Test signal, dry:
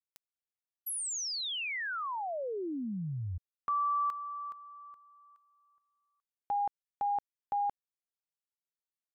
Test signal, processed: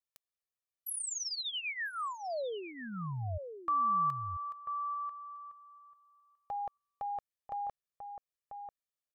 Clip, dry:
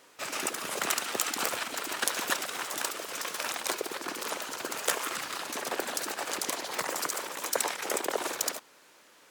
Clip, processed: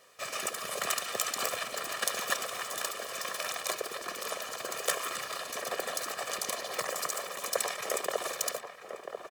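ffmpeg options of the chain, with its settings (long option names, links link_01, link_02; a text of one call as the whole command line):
ffmpeg -i in.wav -filter_complex "[0:a]aecho=1:1:1.7:0.66,asplit=2[link_01][link_02];[link_02]adelay=991.3,volume=-7dB,highshelf=frequency=4000:gain=-22.3[link_03];[link_01][link_03]amix=inputs=2:normalize=0,volume=-3.5dB" out.wav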